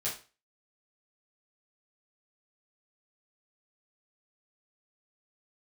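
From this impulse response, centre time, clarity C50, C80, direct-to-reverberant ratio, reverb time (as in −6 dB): 27 ms, 7.0 dB, 13.5 dB, −8.0 dB, 0.35 s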